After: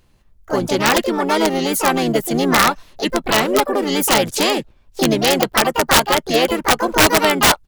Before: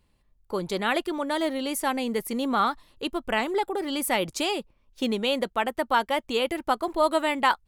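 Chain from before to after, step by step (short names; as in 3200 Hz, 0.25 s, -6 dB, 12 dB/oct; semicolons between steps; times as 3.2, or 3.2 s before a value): harmoniser -7 st -6 dB, +4 st -12 dB, +7 st -4 dB; wrapped overs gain 12.5 dB; gain +8 dB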